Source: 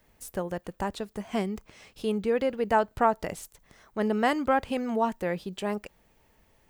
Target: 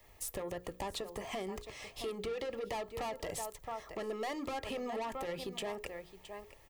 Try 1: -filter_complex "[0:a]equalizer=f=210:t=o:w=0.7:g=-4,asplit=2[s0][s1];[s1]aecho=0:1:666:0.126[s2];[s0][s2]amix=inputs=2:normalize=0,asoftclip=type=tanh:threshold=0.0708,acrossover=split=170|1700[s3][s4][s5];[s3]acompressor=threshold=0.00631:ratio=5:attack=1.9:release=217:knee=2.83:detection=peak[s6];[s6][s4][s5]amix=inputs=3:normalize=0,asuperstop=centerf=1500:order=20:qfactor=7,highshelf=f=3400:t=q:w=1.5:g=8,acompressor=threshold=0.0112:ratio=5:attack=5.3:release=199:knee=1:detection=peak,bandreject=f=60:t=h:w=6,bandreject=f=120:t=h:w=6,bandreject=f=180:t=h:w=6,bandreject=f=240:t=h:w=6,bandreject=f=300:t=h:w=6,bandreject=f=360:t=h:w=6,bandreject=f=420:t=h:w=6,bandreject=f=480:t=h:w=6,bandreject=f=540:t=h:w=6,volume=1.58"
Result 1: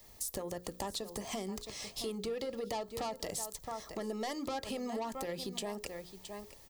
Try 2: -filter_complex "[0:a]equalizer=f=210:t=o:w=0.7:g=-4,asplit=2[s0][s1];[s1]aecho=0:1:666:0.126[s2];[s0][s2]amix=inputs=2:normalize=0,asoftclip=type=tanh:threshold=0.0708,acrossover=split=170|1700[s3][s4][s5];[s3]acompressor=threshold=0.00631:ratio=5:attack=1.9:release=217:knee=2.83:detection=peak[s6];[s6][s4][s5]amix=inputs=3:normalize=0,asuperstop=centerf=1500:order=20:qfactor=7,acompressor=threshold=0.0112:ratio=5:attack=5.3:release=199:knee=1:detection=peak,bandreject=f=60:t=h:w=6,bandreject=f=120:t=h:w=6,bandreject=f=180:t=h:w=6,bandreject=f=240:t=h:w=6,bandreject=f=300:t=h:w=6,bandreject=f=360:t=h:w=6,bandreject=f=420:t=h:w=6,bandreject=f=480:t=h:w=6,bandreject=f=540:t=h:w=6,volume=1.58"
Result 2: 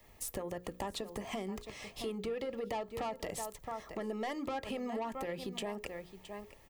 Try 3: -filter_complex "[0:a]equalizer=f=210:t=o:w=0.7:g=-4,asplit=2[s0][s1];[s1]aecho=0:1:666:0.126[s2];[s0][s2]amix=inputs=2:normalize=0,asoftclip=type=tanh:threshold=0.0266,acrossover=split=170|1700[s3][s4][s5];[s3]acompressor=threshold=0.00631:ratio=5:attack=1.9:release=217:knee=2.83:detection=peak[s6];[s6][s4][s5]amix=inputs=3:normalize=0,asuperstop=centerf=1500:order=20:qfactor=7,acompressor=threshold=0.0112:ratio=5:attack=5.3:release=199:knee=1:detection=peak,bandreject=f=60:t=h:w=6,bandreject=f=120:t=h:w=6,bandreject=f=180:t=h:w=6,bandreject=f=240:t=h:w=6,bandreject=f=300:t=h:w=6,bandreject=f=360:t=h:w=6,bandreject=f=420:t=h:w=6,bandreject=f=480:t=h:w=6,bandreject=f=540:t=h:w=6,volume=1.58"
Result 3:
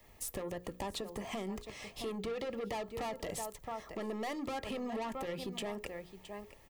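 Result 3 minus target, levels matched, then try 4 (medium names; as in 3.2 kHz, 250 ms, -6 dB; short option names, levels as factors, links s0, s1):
250 Hz band +3.5 dB
-filter_complex "[0:a]equalizer=f=210:t=o:w=0.7:g=-13,asplit=2[s0][s1];[s1]aecho=0:1:666:0.126[s2];[s0][s2]amix=inputs=2:normalize=0,asoftclip=type=tanh:threshold=0.0266,acrossover=split=170|1700[s3][s4][s5];[s3]acompressor=threshold=0.00631:ratio=5:attack=1.9:release=217:knee=2.83:detection=peak[s6];[s6][s4][s5]amix=inputs=3:normalize=0,asuperstop=centerf=1500:order=20:qfactor=7,acompressor=threshold=0.0112:ratio=5:attack=5.3:release=199:knee=1:detection=peak,bandreject=f=60:t=h:w=6,bandreject=f=120:t=h:w=6,bandreject=f=180:t=h:w=6,bandreject=f=240:t=h:w=6,bandreject=f=300:t=h:w=6,bandreject=f=360:t=h:w=6,bandreject=f=420:t=h:w=6,bandreject=f=480:t=h:w=6,bandreject=f=540:t=h:w=6,volume=1.58"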